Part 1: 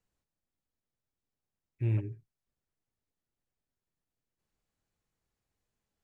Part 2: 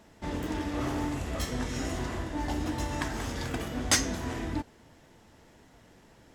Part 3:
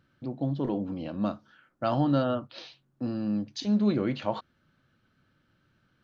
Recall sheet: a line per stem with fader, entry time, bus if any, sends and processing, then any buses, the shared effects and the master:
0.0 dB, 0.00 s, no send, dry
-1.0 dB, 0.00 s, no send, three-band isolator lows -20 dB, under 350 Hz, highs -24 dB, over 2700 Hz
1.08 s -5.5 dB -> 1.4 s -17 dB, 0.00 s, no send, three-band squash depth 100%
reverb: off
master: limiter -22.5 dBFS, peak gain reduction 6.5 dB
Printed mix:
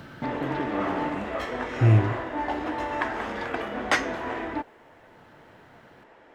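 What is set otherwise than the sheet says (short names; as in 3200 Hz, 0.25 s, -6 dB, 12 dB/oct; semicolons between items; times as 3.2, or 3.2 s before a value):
stem 1 0.0 dB -> +11.5 dB; stem 2 -1.0 dB -> +8.5 dB; master: missing limiter -22.5 dBFS, peak gain reduction 6.5 dB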